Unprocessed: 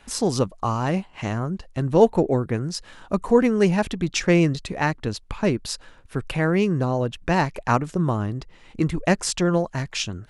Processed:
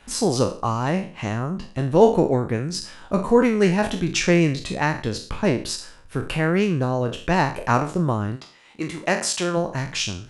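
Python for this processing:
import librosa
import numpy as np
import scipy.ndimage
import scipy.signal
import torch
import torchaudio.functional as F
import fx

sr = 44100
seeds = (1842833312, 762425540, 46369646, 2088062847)

y = fx.spec_trails(x, sr, decay_s=0.42)
y = fx.highpass(y, sr, hz=fx.line((8.35, 810.0), (9.56, 340.0)), slope=6, at=(8.35, 9.56), fade=0.02)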